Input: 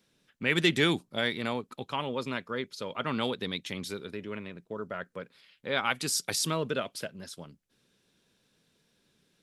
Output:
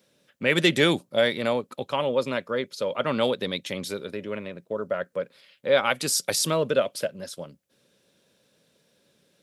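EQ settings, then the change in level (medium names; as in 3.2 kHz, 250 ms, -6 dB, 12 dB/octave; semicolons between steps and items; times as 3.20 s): high-pass 87 Hz; peaking EQ 560 Hz +11.5 dB 0.38 oct; treble shelf 9.6 kHz +4.5 dB; +3.5 dB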